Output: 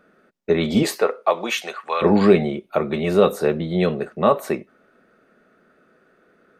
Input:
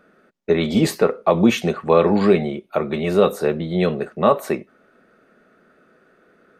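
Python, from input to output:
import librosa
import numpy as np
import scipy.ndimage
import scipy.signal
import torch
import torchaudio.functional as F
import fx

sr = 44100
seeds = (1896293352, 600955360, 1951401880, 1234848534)

y = fx.highpass(x, sr, hz=fx.line((0.82, 370.0), (2.01, 1300.0)), slope=12, at=(0.82, 2.01), fade=0.02)
y = fx.rider(y, sr, range_db=10, speed_s=2.0)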